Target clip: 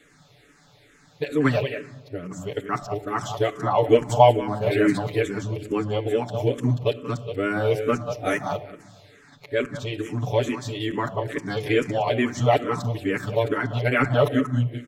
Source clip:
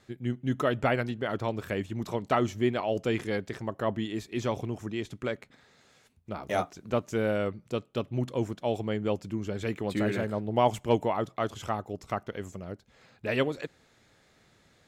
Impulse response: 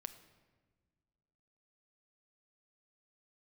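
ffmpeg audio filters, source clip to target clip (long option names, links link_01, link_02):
-filter_complex "[0:a]areverse,aecho=1:1:6.9:0.77,aecho=1:1:185:0.299,asplit=2[link_01][link_02];[1:a]atrim=start_sample=2205[link_03];[link_02][link_03]afir=irnorm=-1:irlink=0,volume=9dB[link_04];[link_01][link_04]amix=inputs=2:normalize=0,asplit=2[link_05][link_06];[link_06]afreqshift=-2.3[link_07];[link_05][link_07]amix=inputs=2:normalize=1,volume=-1dB"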